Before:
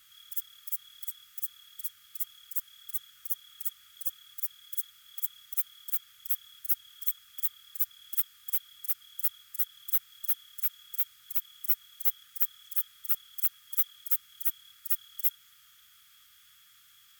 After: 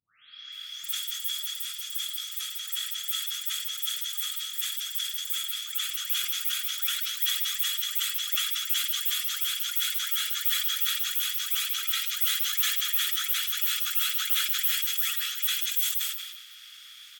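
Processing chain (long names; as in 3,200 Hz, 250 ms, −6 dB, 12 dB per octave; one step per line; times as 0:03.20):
every frequency bin delayed by itself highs late, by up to 523 ms
meter weighting curve D
echo with shifted repeats 186 ms, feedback 34%, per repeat +61 Hz, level −3 dB
convolution reverb RT60 1.4 s, pre-delay 40 ms, DRR −1.5 dB
level that may fall only so fast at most 47 dB per second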